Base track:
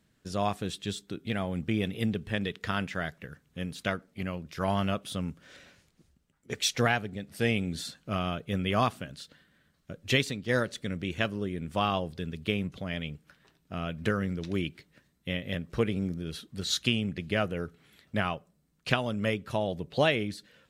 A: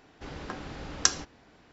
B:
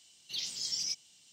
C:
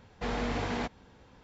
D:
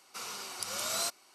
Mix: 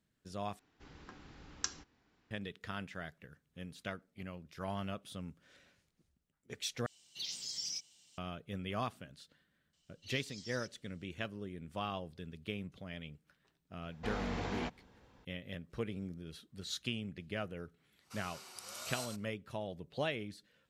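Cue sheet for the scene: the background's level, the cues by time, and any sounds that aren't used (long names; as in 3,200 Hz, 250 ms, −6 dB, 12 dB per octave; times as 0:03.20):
base track −11.5 dB
0:00.59: overwrite with A −14 dB + parametric band 600 Hz −7 dB 0.74 octaves
0:06.86: overwrite with B −4 dB + brickwall limiter −26.5 dBFS
0:09.73: mix in B −14 dB + high-frequency loss of the air 52 metres
0:13.82: mix in C −6.5 dB + hard clipping −24 dBFS
0:17.96: mix in D −12 dB, fades 0.10 s + single-tap delay 102 ms −5.5 dB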